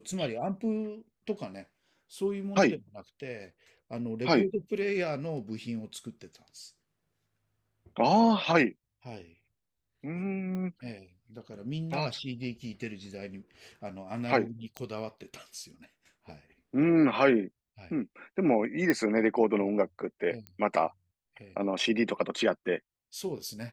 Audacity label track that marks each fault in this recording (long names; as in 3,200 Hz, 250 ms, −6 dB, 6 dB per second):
10.550000	10.550000	click −26 dBFS
14.770000	14.770000	click −21 dBFS
18.900000	18.900000	click −13 dBFS
20.470000	20.470000	click −27 dBFS